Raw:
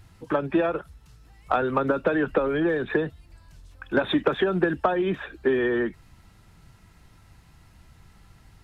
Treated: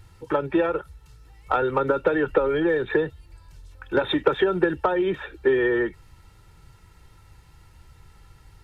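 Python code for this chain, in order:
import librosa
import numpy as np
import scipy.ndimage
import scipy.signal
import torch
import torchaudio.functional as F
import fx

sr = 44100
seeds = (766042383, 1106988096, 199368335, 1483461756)

y = x + 0.54 * np.pad(x, (int(2.2 * sr / 1000.0), 0))[:len(x)]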